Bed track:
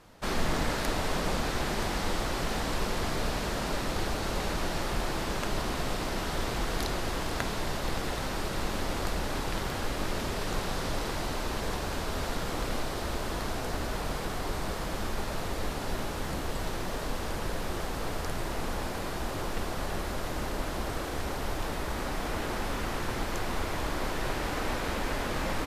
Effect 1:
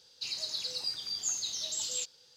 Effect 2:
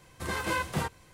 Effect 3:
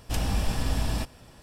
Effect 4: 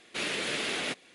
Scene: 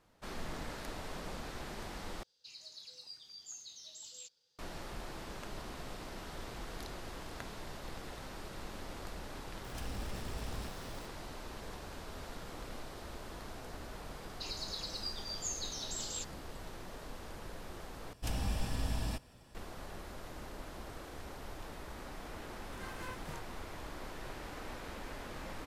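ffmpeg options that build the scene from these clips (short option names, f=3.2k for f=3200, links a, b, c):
-filter_complex "[1:a]asplit=2[a][b];[3:a]asplit=2[c][d];[0:a]volume=-13.5dB[e];[c]aeval=exprs='val(0)+0.5*0.0251*sgn(val(0))':c=same[f];[e]asplit=3[g][h][i];[g]atrim=end=2.234[j];[a]atrim=end=2.36,asetpts=PTS-STARTPTS,volume=-15.5dB[k];[h]atrim=start=4.586:end=18.134[l];[d]atrim=end=1.42,asetpts=PTS-STARTPTS,volume=-8.5dB[m];[i]atrim=start=19.546[n];[f]atrim=end=1.42,asetpts=PTS-STARTPTS,volume=-17dB,afade=t=in:d=0.004:c=hsin,afade=t=out:st=1.416:d=0.004:c=hsin,adelay=9640[o];[b]atrim=end=2.36,asetpts=PTS-STARTPTS,volume=-6.5dB,afade=t=in:d=0.004:c=hsin,afade=t=out:st=2.356:d=0.004:c=hsin,adelay=14190[p];[2:a]atrim=end=1.13,asetpts=PTS-STARTPTS,volume=-17dB,afade=t=in:d=0.004:c=hsin,afade=t=out:st=1.126:d=0.004:c=hsin,adelay=22520[q];[j][k]acrossfade=d=0.004:c1=hsin:c2=hsin[r];[r][l]acrossfade=d=0.004:c1=hsin:c2=hsin[s];[s][m]acrossfade=d=0.004:c1=hsin:c2=hsin[t];[t][n]acrossfade=d=0.004:c1=hsin:c2=hsin[u];[u][o][p][q]amix=inputs=4:normalize=0"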